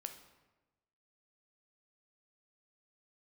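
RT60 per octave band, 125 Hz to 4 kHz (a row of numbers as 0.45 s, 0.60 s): 1.3 s, 1.2 s, 1.2 s, 1.1 s, 0.95 s, 0.75 s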